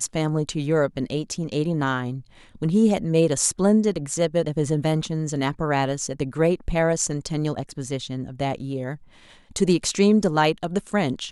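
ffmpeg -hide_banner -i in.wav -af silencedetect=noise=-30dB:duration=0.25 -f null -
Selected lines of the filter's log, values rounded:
silence_start: 2.19
silence_end: 2.62 | silence_duration: 0.43
silence_start: 8.95
silence_end: 9.56 | silence_duration: 0.61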